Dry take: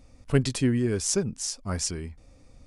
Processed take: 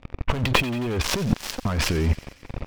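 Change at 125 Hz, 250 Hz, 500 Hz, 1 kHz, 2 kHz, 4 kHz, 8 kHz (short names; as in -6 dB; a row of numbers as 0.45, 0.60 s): +3.5, +0.5, 0.0, +13.5, +11.0, +6.5, -4.5 dB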